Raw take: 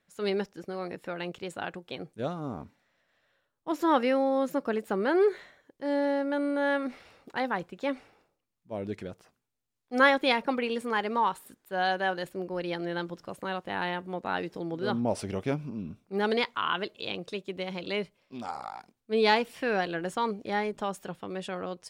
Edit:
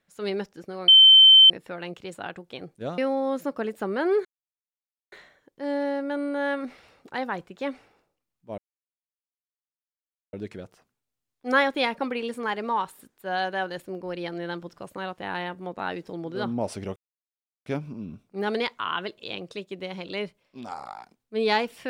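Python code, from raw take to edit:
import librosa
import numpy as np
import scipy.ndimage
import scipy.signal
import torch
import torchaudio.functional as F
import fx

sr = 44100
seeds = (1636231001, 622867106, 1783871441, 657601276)

y = fx.edit(x, sr, fx.insert_tone(at_s=0.88, length_s=0.62, hz=3090.0, db=-9.0),
    fx.cut(start_s=2.36, length_s=1.71),
    fx.insert_silence(at_s=5.34, length_s=0.87),
    fx.insert_silence(at_s=8.8, length_s=1.75),
    fx.insert_silence(at_s=15.43, length_s=0.7), tone=tone)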